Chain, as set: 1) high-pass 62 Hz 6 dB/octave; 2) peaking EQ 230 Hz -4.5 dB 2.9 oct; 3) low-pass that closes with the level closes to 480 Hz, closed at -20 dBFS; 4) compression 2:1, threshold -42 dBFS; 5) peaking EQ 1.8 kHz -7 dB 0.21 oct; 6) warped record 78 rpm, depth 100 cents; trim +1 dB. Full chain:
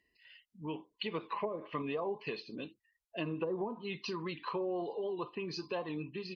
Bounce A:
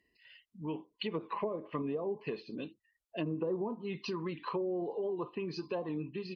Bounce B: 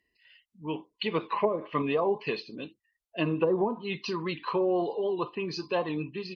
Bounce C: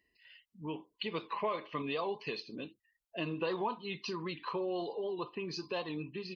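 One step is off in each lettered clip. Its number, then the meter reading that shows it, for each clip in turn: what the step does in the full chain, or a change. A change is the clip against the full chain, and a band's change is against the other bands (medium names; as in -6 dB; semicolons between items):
2, loudness change +1.0 LU; 4, mean gain reduction 7.0 dB; 3, 1 kHz band +2.5 dB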